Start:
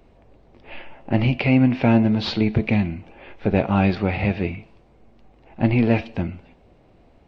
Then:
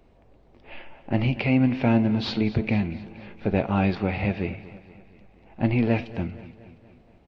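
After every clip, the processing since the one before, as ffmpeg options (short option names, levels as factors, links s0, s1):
-af "aecho=1:1:235|470|705|940|1175:0.133|0.0747|0.0418|0.0234|0.0131,volume=0.631"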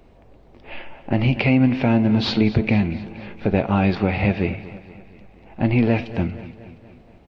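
-af "alimiter=limit=0.237:level=0:latency=1:release=210,volume=2.11"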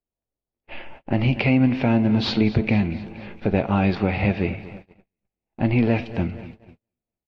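-af "agate=range=0.01:threshold=0.0126:ratio=16:detection=peak,volume=0.841"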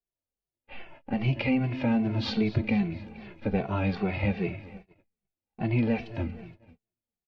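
-filter_complex "[0:a]asplit=2[s0][s1];[s1]adelay=2.2,afreqshift=-2.5[s2];[s0][s2]amix=inputs=2:normalize=1,volume=0.631"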